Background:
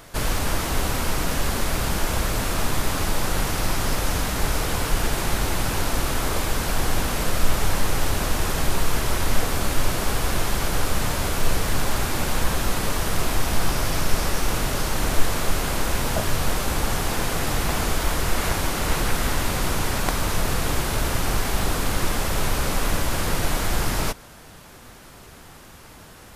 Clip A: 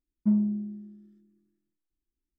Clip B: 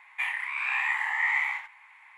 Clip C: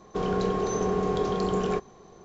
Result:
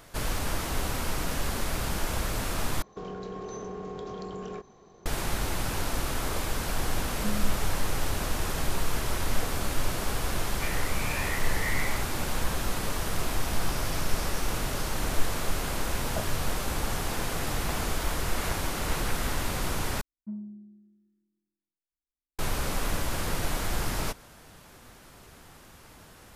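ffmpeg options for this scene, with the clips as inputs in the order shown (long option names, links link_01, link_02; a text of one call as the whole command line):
ffmpeg -i bed.wav -i cue0.wav -i cue1.wav -i cue2.wav -filter_complex "[1:a]asplit=2[link_01][link_02];[0:a]volume=-6.5dB[link_03];[3:a]acompressor=threshold=-30dB:ratio=6:attack=3.2:release=140:knee=1:detection=peak[link_04];[link_03]asplit=3[link_05][link_06][link_07];[link_05]atrim=end=2.824[link_08];[link_04]atrim=end=2.24,asetpts=PTS-STARTPTS,volume=-4dB[link_09];[link_06]atrim=start=5.056:end=20.014[link_10];[link_02]atrim=end=2.38,asetpts=PTS-STARTPTS,volume=-14.5dB[link_11];[link_07]atrim=start=22.386[link_12];[link_01]atrim=end=2.38,asetpts=PTS-STARTPTS,volume=-11dB,afade=type=in:duration=0.004:curve=hsin,afade=type=out:start_time=2.376:duration=0.004:curve=hsin,adelay=307818S[link_13];[2:a]atrim=end=2.17,asetpts=PTS-STARTPTS,volume=-8dB,afade=type=in:duration=0.004:curve=hsin,afade=type=out:start_time=2.166:duration=0.004:curve=hsin,adelay=10430[link_14];[link_08][link_09]acrossfade=duration=0.004:curve1=hsin:curve2=hsin[link_15];[link_15][link_10]acrossfade=duration=0.004:curve1=hsin:curve2=hsin[link_16];[link_16][link_11]acrossfade=duration=0.004:curve1=hsin:curve2=hsin[link_17];[link_17][link_12]acrossfade=duration=0.004:curve1=hsin:curve2=hsin[link_18];[link_18][link_13][link_14]amix=inputs=3:normalize=0" out.wav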